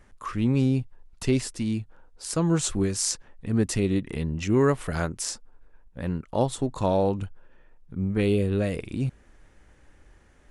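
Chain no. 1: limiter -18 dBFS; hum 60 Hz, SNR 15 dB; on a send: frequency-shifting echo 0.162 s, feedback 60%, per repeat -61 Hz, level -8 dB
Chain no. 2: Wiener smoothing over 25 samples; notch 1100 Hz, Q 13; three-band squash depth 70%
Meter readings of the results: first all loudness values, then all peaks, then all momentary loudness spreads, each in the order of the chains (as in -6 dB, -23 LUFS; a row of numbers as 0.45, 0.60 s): -29.0, -27.0 LUFS; -14.5, -9.5 dBFS; 16, 17 LU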